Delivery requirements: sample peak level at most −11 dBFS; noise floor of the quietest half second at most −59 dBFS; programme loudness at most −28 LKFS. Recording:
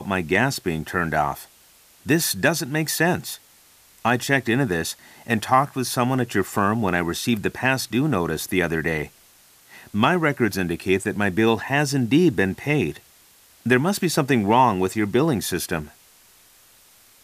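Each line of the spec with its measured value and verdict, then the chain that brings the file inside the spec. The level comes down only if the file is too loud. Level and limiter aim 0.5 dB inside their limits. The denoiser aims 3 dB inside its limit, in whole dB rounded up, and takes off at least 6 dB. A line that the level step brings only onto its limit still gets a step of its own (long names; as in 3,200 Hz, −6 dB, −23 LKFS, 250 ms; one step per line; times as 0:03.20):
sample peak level −4.5 dBFS: out of spec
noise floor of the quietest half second −54 dBFS: out of spec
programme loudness −22.0 LKFS: out of spec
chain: level −6.5 dB
brickwall limiter −11.5 dBFS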